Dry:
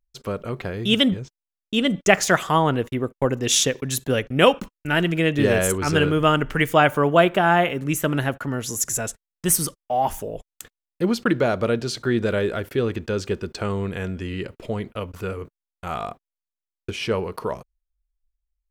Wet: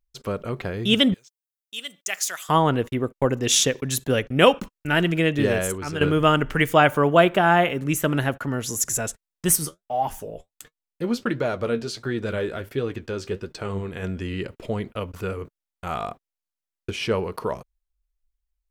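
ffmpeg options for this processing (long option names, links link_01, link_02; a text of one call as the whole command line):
ffmpeg -i in.wav -filter_complex "[0:a]asettb=1/sr,asplit=3[link_01][link_02][link_03];[link_01]atrim=end=1.144[link_04];[link_02]atrim=start=1.14:end=2.49,asetpts=PTS-STARTPTS,afade=type=in:duration=0.004:curve=qsin,afade=type=out:start_time=1.346:duration=0.004:curve=qsin,aderivative[link_05];[link_03]atrim=start=2.486[link_06];[link_04][link_05]acrossfade=duration=0.004:curve1=hsin:curve2=qsin[link_07];[link_07][link_06]acrossfade=duration=0.004:curve1=qsin:curve2=hsin,asplit=3[link_08][link_09][link_10];[link_08]afade=type=out:start_time=9.55:duration=0.02[link_11];[link_09]flanger=delay=6.3:depth=6.9:regen=52:speed=1.4:shape=sinusoidal,afade=type=in:start_time=9.55:duration=0.02,afade=type=out:start_time=14.02:duration=0.02[link_12];[link_10]afade=type=in:start_time=14.02:duration=0.02[link_13];[link_11][link_12][link_13]amix=inputs=3:normalize=0,asplit=2[link_14][link_15];[link_14]atrim=end=6.01,asetpts=PTS-STARTPTS,afade=type=out:start_time=5.18:duration=0.83:silence=0.281838[link_16];[link_15]atrim=start=6.01,asetpts=PTS-STARTPTS,afade=type=in:duration=0.004:curve=hsin:silence=0.281838[link_17];[link_16][link_17]concat=n=2:v=0:a=1" out.wav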